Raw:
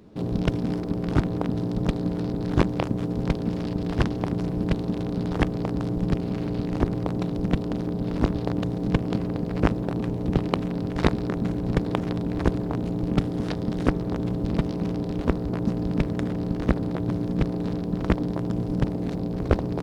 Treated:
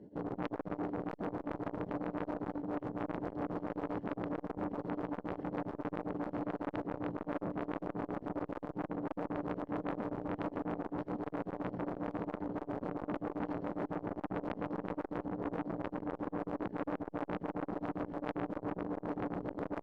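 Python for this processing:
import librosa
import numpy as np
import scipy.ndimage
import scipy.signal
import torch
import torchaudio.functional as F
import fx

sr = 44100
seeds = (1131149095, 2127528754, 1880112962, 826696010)

p1 = fx.highpass(x, sr, hz=94.0, slope=6)
p2 = fx.low_shelf(p1, sr, hz=140.0, db=-11.0)
p3 = fx.over_compress(p2, sr, threshold_db=-30.0, ratio=-0.5)
p4 = np.convolve(p3, np.full(36, 1.0 / 36))[:len(p3)]
p5 = fx.comb_fb(p4, sr, f0_hz=290.0, decay_s=0.23, harmonics='all', damping=0.0, mix_pct=70)
p6 = fx.tremolo_shape(p5, sr, shape='triangle', hz=7.4, depth_pct=90)
p7 = fx.clip_asym(p6, sr, top_db=-42.5, bottom_db=-29.5)
p8 = p7 + fx.echo_feedback(p7, sr, ms=104, feedback_pct=28, wet_db=-17.5, dry=0)
p9 = fx.transformer_sat(p8, sr, knee_hz=1600.0)
y = F.gain(torch.from_numpy(p9), 12.5).numpy()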